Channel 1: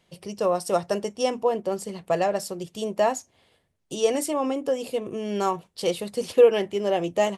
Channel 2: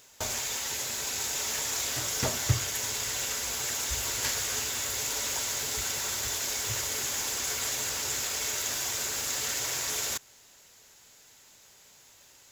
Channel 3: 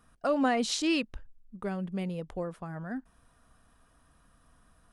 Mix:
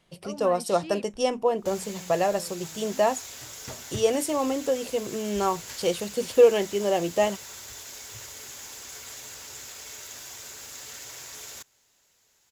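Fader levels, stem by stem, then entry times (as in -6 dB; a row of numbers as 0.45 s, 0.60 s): -0.5 dB, -10.0 dB, -12.5 dB; 0.00 s, 1.45 s, 0.00 s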